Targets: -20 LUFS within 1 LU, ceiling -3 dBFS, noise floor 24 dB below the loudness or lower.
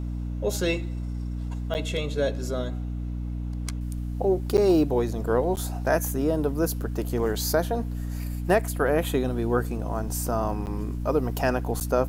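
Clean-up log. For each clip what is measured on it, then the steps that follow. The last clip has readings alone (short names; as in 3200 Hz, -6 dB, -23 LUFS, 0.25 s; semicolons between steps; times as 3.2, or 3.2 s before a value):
dropouts 5; longest dropout 9.3 ms; hum 60 Hz; harmonics up to 300 Hz; hum level -28 dBFS; loudness -27.0 LUFS; peak -8.5 dBFS; loudness target -20.0 LUFS
-> interpolate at 1.74/4.57/5.56/10.66/11.8, 9.3 ms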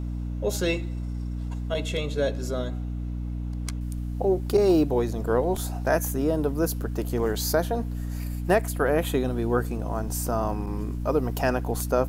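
dropouts 0; hum 60 Hz; harmonics up to 300 Hz; hum level -28 dBFS
-> de-hum 60 Hz, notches 5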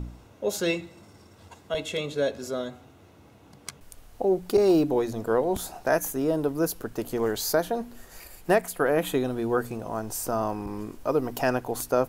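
hum none; loudness -27.0 LUFS; peak -9.0 dBFS; loudness target -20.0 LUFS
-> gain +7 dB; limiter -3 dBFS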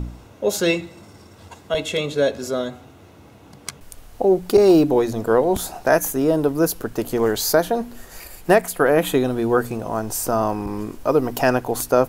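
loudness -20.0 LUFS; peak -3.0 dBFS; noise floor -47 dBFS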